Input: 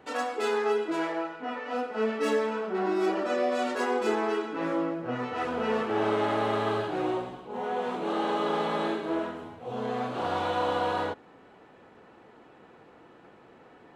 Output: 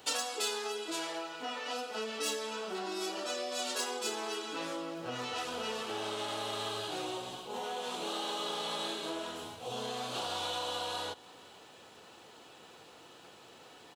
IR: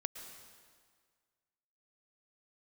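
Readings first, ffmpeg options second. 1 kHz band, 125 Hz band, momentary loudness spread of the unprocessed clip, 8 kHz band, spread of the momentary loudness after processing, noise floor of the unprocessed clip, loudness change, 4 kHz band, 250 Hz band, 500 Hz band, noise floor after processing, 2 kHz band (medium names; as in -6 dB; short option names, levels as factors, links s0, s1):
-8.5 dB, -11.0 dB, 7 LU, no reading, 20 LU, -55 dBFS, -7.0 dB, +5.5 dB, -12.5 dB, -10.5 dB, -55 dBFS, -6.5 dB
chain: -filter_complex "[0:a]highpass=77,equalizer=f=230:t=o:w=1.9:g=-6.5,acompressor=threshold=0.0158:ratio=6,aexciter=amount=5.2:drive=6.6:freq=2900,asplit=2[s0][s1];[s1]aecho=0:1:466:0.0668[s2];[s0][s2]amix=inputs=2:normalize=0"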